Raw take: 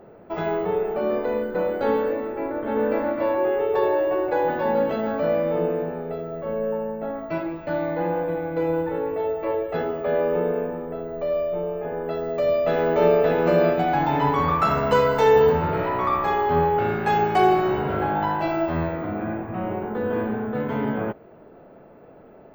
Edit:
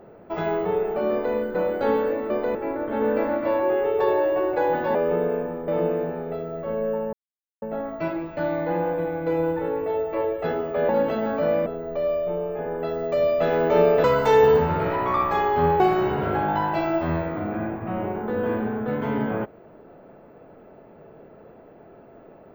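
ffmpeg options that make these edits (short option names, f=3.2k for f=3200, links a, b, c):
-filter_complex "[0:a]asplit=10[a][b][c][d][e][f][g][h][i][j];[a]atrim=end=2.302[k];[b]atrim=start=1.108:end=1.362[l];[c]atrim=start=2.298:end=4.702[m];[d]atrim=start=10.188:end=10.922[n];[e]atrim=start=5.468:end=6.92,asetpts=PTS-STARTPTS,afade=t=out:st=1.448:d=0.004:c=hsin,apad=pad_dur=0.49[o];[f]atrim=start=6.92:end=10.192,asetpts=PTS-STARTPTS,afade=t=in:d=0.004:c=hsin[p];[g]atrim=start=4.698:end=5.472[q];[h]atrim=start=10.918:end=13.302[r];[i]atrim=start=14.968:end=16.732[s];[j]atrim=start=17.468[t];[k][l]acrossfade=d=0.004:c1=hsin:c2=hsin[u];[u][m]acrossfade=d=0.004:c1=hsin:c2=hsin[v];[v][n]acrossfade=d=0.004:c1=hsin:c2=hsin[w];[o][p]concat=n=2:v=0:a=1[x];[w][x]acrossfade=d=0.004:c1=hsin:c2=hsin[y];[y][q]acrossfade=d=0.004:c1=hsin:c2=hsin[z];[z][r]acrossfade=d=0.004:c1=hsin:c2=hsin[aa];[aa][s]acrossfade=d=0.004:c1=hsin:c2=hsin[ab];[ab][t]acrossfade=d=0.004:c1=hsin:c2=hsin"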